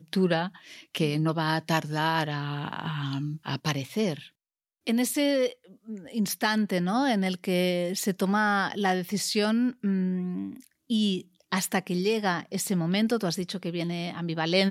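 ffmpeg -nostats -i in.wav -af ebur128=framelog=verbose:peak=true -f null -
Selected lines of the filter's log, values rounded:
Integrated loudness:
  I:         -27.6 LUFS
  Threshold: -37.9 LUFS
Loudness range:
  LRA:         3.5 LU
  Threshold: -47.9 LUFS
  LRA low:   -29.7 LUFS
  LRA high:  -26.2 LUFS
True peak:
  Peak:      -10.0 dBFS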